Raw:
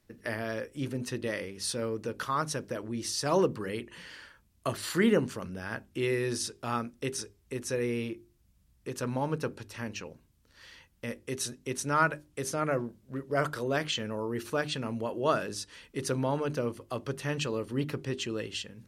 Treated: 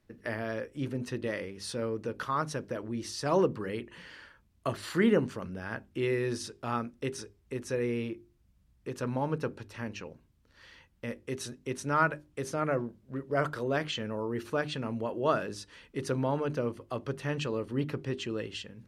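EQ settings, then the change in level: high shelf 4600 Hz -10.5 dB; 0.0 dB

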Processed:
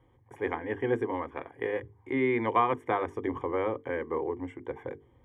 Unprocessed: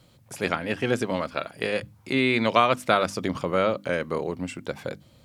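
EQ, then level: polynomial smoothing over 41 samples; notches 50/100/150/200/250/300/350/400/450 Hz; fixed phaser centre 920 Hz, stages 8; 0.0 dB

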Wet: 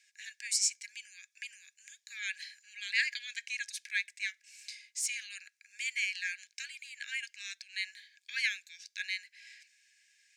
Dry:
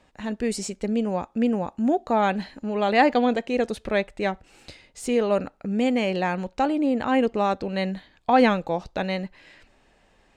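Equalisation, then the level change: rippled Chebyshev high-pass 1600 Hz, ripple 9 dB; high shelf 3700 Hz +10 dB; 0.0 dB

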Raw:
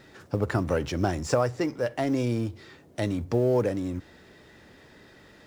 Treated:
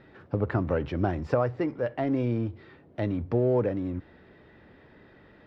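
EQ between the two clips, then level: air absorption 390 m; 0.0 dB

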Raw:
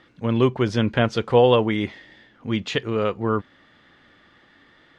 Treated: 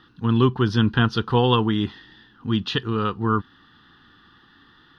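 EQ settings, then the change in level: fixed phaser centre 2200 Hz, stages 6; +4.0 dB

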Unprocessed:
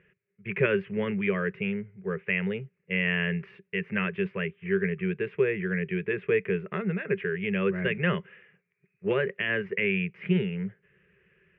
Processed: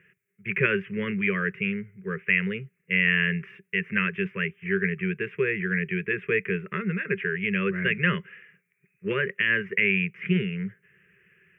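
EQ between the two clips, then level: HPF 91 Hz; high shelf 2100 Hz +9.5 dB; fixed phaser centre 1800 Hz, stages 4; +2.0 dB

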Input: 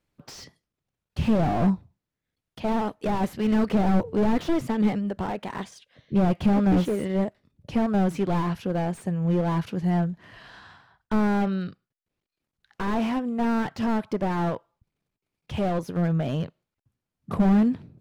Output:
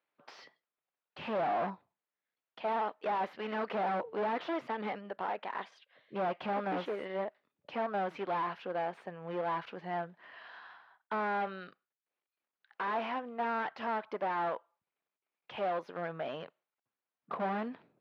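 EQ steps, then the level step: HPF 680 Hz 12 dB/oct; air absorption 330 m; 0.0 dB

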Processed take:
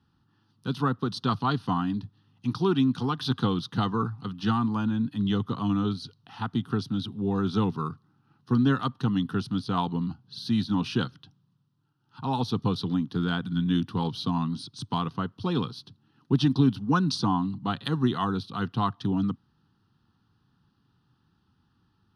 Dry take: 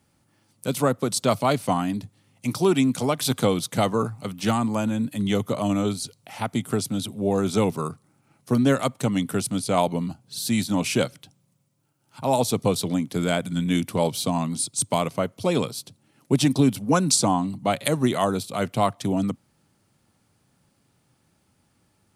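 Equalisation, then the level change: air absorption 94 m; high shelf 8200 Hz -6.5 dB; fixed phaser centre 2200 Hz, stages 6; 0.0 dB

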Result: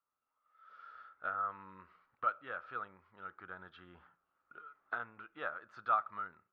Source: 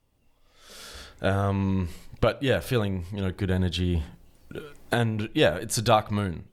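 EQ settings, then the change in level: band-pass 1300 Hz, Q 12; air absorption 240 m; +4.5 dB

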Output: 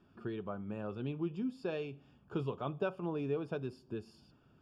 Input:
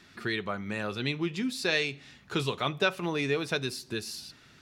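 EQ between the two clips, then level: running mean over 22 samples; -5.0 dB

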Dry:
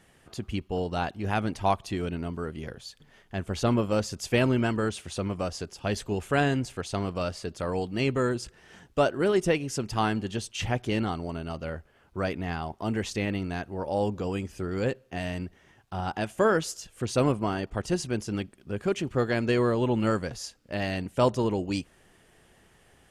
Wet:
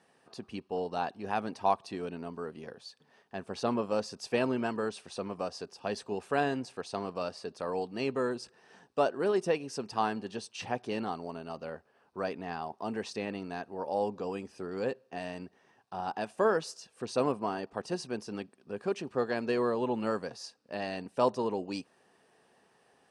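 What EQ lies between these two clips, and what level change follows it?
speaker cabinet 300–9200 Hz, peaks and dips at 330 Hz -7 dB, 590 Hz -4 dB, 1400 Hz -6 dB, 2100 Hz -10 dB, 3200 Hz -9 dB, 7000 Hz -10 dB; high shelf 5000 Hz -5 dB; 0.0 dB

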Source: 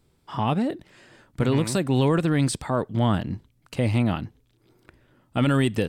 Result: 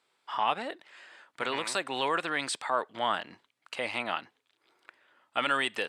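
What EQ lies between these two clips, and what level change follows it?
HPF 940 Hz 12 dB/oct; air absorption 63 m; bell 5700 Hz -4.5 dB 0.66 oct; +3.5 dB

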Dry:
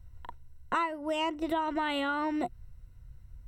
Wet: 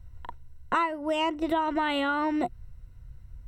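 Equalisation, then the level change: high shelf 5800 Hz -4.5 dB; +4.0 dB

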